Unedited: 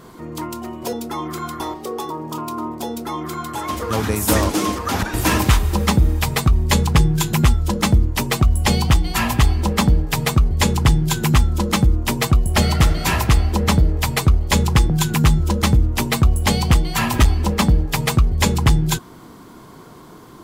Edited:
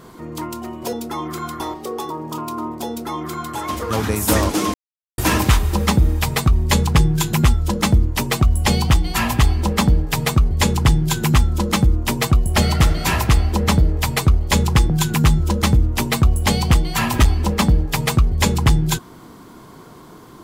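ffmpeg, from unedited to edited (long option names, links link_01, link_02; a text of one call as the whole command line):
ffmpeg -i in.wav -filter_complex "[0:a]asplit=3[link_01][link_02][link_03];[link_01]atrim=end=4.74,asetpts=PTS-STARTPTS,afade=type=out:start_time=4.736:duration=0.004:curve=hsin[link_04];[link_02]atrim=start=4.74:end=5.18,asetpts=PTS-STARTPTS,volume=0[link_05];[link_03]atrim=start=5.18,asetpts=PTS-STARTPTS,afade=type=in:duration=0.004:curve=hsin[link_06];[link_04][link_05][link_06]concat=n=3:v=0:a=1" out.wav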